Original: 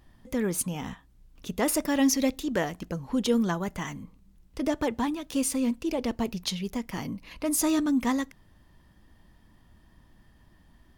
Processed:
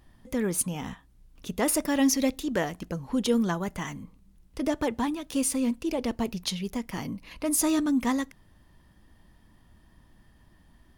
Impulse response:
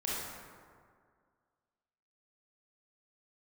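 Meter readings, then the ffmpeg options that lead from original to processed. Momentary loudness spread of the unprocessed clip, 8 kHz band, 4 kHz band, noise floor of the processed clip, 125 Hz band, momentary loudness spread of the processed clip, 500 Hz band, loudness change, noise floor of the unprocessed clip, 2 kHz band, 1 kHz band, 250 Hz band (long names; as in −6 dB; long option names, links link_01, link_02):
13 LU, +1.5 dB, 0.0 dB, −60 dBFS, 0.0 dB, 13 LU, 0.0 dB, +0.5 dB, −60 dBFS, 0.0 dB, 0.0 dB, 0.0 dB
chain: -af "equalizer=frequency=9800:width=5.9:gain=5"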